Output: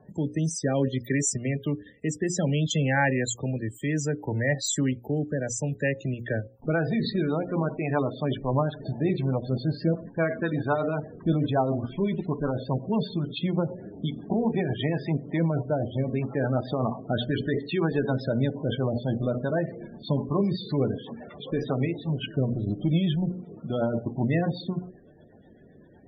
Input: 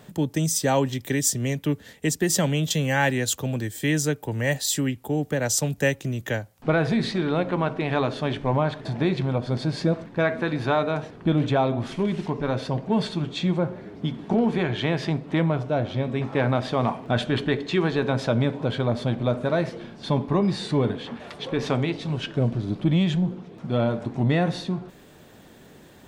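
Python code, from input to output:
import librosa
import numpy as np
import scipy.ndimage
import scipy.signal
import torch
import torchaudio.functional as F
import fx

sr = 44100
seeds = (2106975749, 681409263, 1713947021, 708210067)

p1 = fx.hum_notches(x, sr, base_hz=60, count=9)
p2 = fx.level_steps(p1, sr, step_db=15)
p3 = p1 + (p2 * 10.0 ** (1.0 / 20.0))
p4 = fx.rotary_switch(p3, sr, hz=0.6, then_hz=8.0, switch_at_s=6.12)
p5 = fx.spec_topn(p4, sr, count=32)
y = p5 * 10.0 ** (-3.5 / 20.0)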